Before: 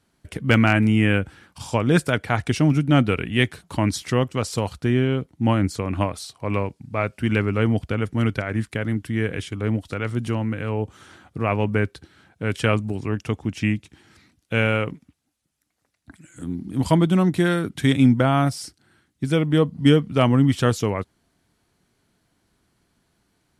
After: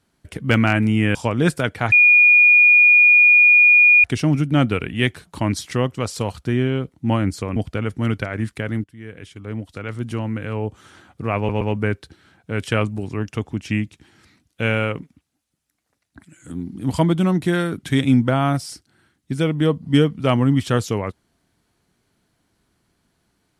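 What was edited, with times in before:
1.15–1.64 cut
2.41 add tone 2440 Hz -8 dBFS 2.12 s
5.93–7.72 cut
9–10.55 fade in, from -20.5 dB
11.53 stutter 0.12 s, 3 plays

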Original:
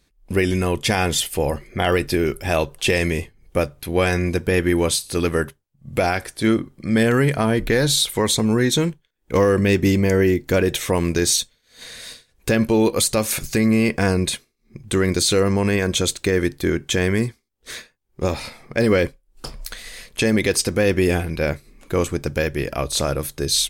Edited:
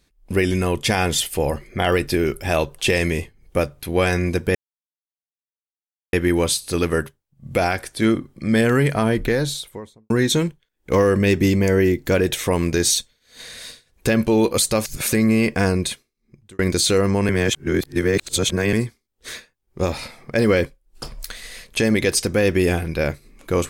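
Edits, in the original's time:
4.55 insert silence 1.58 s
7.49–8.52 studio fade out
13.27–13.54 reverse
14.11–15.01 fade out
15.71–17.15 reverse

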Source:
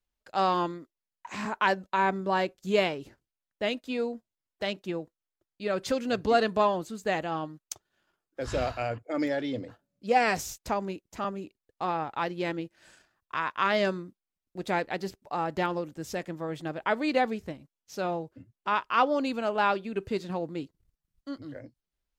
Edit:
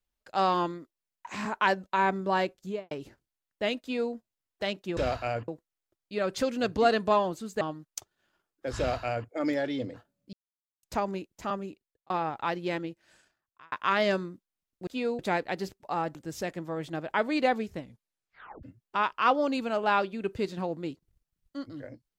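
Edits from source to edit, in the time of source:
2.52–2.91 studio fade out
3.81–4.13 copy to 14.61
7.1–7.35 cut
8.52–9.03 copy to 4.97
10.07–10.57 mute
11.36–11.84 fade out linear
12.41–13.46 fade out
15.57–15.87 cut
17.51 tape stop 0.84 s

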